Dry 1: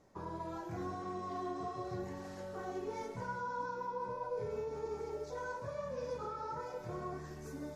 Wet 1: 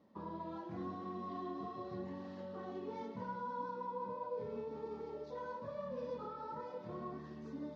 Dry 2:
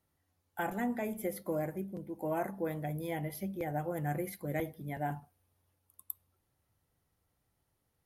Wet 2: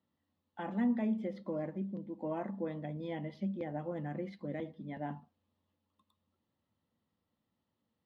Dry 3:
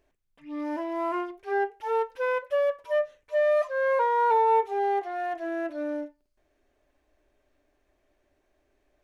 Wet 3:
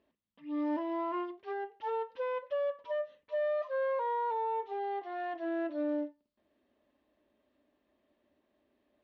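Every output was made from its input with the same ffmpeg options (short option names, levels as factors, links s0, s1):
-af "alimiter=level_in=1.06:limit=0.0631:level=0:latency=1:release=145,volume=0.944,highpass=130,equalizer=f=130:t=q:w=4:g=-8,equalizer=f=220:t=q:w=4:g=9,equalizer=f=400:t=q:w=4:g=-6,equalizer=f=740:t=q:w=4:g=-7,equalizer=f=1500:t=q:w=4:g=-9,equalizer=f=2300:t=q:w=4:g=-8,lowpass=f=3900:w=0.5412,lowpass=f=3900:w=1.3066"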